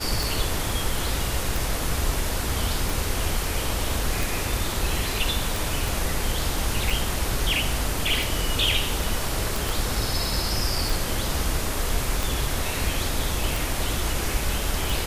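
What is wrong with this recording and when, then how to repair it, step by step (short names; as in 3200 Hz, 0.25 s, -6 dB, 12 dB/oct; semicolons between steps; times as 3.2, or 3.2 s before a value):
tick 45 rpm
5.88 pop
9.69 pop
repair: de-click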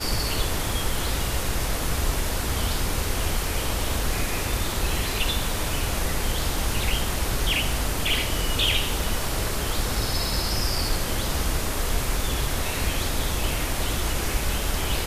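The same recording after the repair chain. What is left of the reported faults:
5.88 pop
9.69 pop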